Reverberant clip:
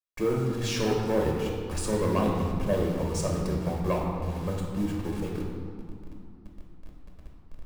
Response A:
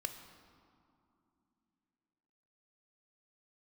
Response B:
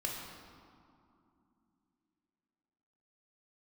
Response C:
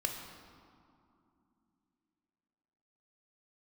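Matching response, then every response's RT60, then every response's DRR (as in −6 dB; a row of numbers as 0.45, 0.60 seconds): B; 2.7, 2.6, 2.6 seconds; 7.0, −1.5, 3.0 decibels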